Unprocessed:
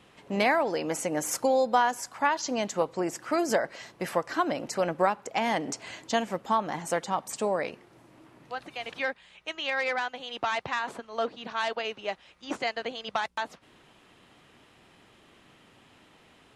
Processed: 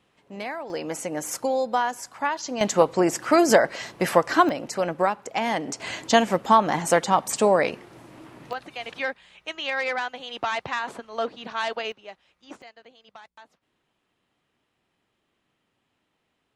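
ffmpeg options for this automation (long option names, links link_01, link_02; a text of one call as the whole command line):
ffmpeg -i in.wav -af "asetnsamples=nb_out_samples=441:pad=0,asendcmd='0.7 volume volume -0.5dB;2.61 volume volume 9dB;4.49 volume volume 2dB;5.8 volume volume 9dB;8.53 volume volume 2dB;11.92 volume volume -9dB;12.62 volume volume -17dB',volume=-9dB" out.wav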